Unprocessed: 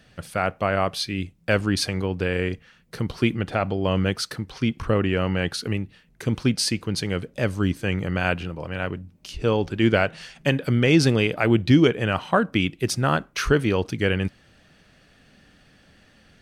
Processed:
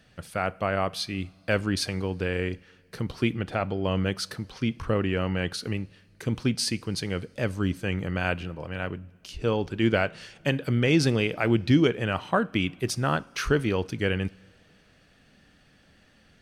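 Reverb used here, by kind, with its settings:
coupled-rooms reverb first 0.52 s, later 2.6 s, from −13 dB, DRR 20 dB
level −4 dB

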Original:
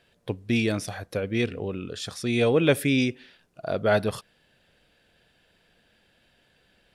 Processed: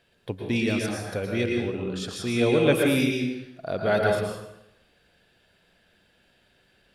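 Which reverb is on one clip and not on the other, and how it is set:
dense smooth reverb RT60 0.86 s, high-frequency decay 0.8×, pre-delay 100 ms, DRR 0 dB
level −2 dB

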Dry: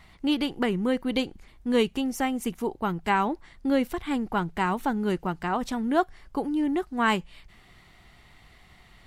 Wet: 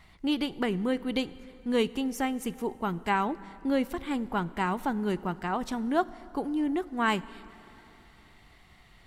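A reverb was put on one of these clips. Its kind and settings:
dense smooth reverb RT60 3.5 s, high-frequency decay 0.65×, DRR 17.5 dB
level −3 dB

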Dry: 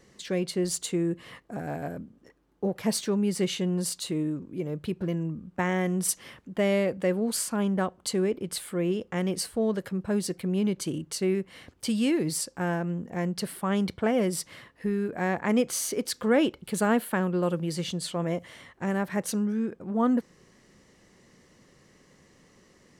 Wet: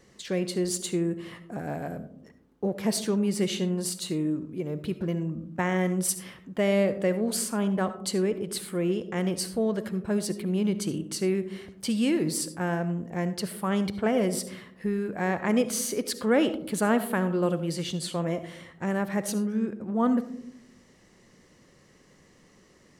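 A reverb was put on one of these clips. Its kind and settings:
comb and all-pass reverb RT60 0.67 s, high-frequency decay 0.25×, pre-delay 30 ms, DRR 12 dB

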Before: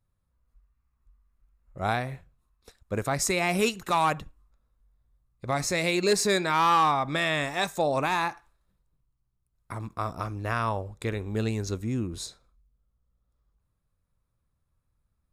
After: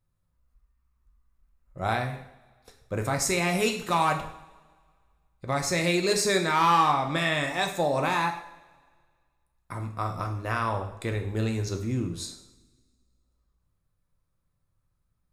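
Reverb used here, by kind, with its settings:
coupled-rooms reverb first 0.63 s, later 1.9 s, from −19 dB, DRR 3.5 dB
level −1 dB

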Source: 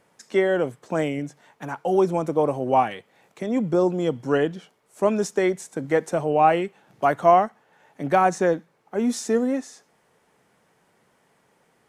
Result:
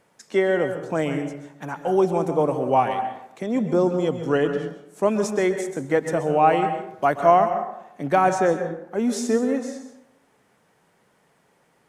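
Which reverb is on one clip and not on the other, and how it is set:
dense smooth reverb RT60 0.8 s, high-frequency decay 0.5×, pre-delay 115 ms, DRR 7.5 dB

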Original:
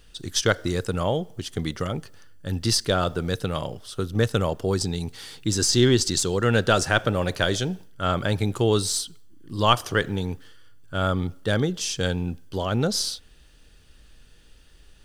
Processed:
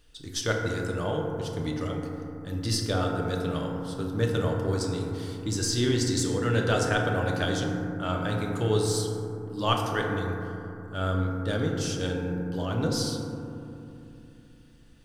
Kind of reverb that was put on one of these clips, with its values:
feedback delay network reverb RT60 2.9 s, low-frequency decay 1.35×, high-frequency decay 0.25×, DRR −0.5 dB
level −8 dB

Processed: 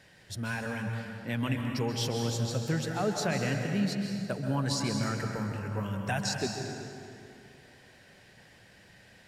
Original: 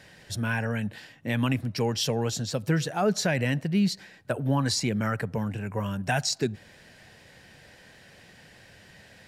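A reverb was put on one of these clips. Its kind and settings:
dense smooth reverb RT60 2.6 s, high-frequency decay 0.65×, pre-delay 120 ms, DRR 2.5 dB
level −6 dB

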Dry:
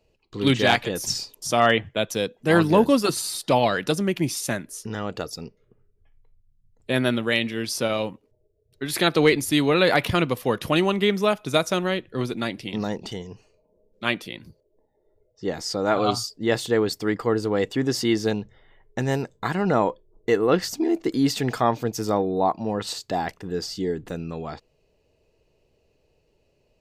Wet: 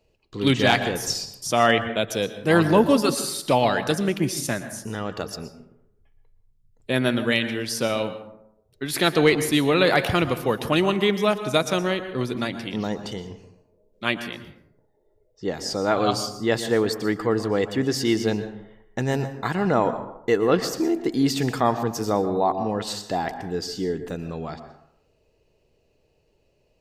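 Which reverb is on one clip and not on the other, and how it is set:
dense smooth reverb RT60 0.74 s, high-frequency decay 0.45×, pre-delay 105 ms, DRR 10.5 dB

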